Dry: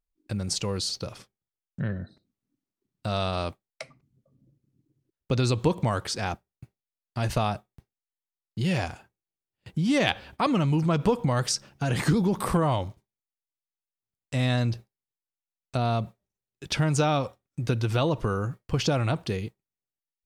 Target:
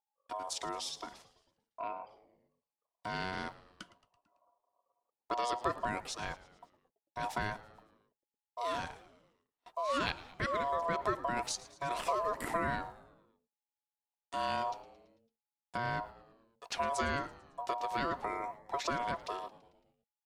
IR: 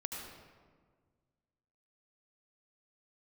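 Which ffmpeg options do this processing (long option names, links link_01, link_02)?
-filter_complex "[0:a]aeval=exprs='val(0)*sin(2*PI*840*n/s)':channel_layout=same,asplit=6[link_01][link_02][link_03][link_04][link_05][link_06];[link_02]adelay=111,afreqshift=-100,volume=-18.5dB[link_07];[link_03]adelay=222,afreqshift=-200,volume=-23.4dB[link_08];[link_04]adelay=333,afreqshift=-300,volume=-28.3dB[link_09];[link_05]adelay=444,afreqshift=-400,volume=-33.1dB[link_10];[link_06]adelay=555,afreqshift=-500,volume=-38dB[link_11];[link_01][link_07][link_08][link_09][link_10][link_11]amix=inputs=6:normalize=0,volume=-7.5dB"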